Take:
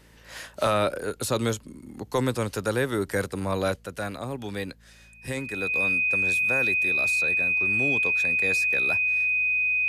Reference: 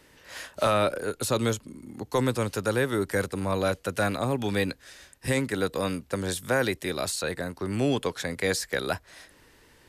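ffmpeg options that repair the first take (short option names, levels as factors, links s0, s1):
-af "bandreject=f=55.8:t=h:w=4,bandreject=f=111.6:t=h:w=4,bandreject=f=167.4:t=h:w=4,bandreject=f=223.2:t=h:w=4,bandreject=f=2500:w=30,asetnsamples=n=441:p=0,asendcmd='3.76 volume volume 6dB',volume=1"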